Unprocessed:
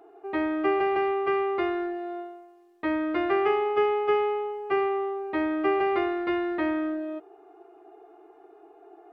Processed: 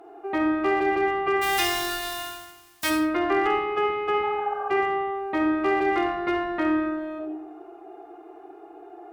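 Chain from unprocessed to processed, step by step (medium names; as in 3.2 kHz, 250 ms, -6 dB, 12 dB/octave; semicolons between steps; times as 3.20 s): 1.41–2.89 s: formants flattened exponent 0.1; band-stop 430 Hz, Q 12; 4.26–4.65 s: spectral replace 490–1800 Hz both; in parallel at -1 dB: compression 6:1, threshold -36 dBFS, peak gain reduction 14.5 dB; on the sum: one-sided clip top -18.5 dBFS, bottom -13.5 dBFS; on a send at -3 dB: reverberation RT60 0.65 s, pre-delay 47 ms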